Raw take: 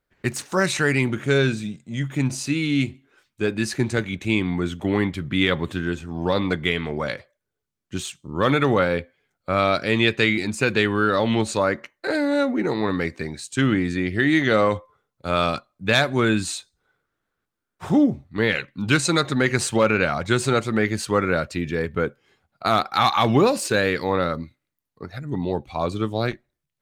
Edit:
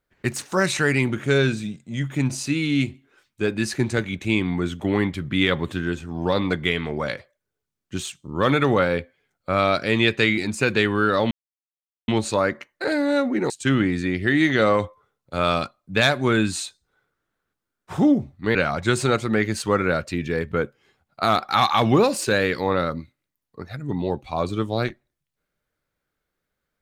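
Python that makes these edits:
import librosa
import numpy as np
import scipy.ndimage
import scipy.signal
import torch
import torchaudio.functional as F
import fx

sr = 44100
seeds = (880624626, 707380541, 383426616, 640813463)

y = fx.edit(x, sr, fx.insert_silence(at_s=11.31, length_s=0.77),
    fx.cut(start_s=12.73, length_s=0.69),
    fx.cut(start_s=18.47, length_s=1.51), tone=tone)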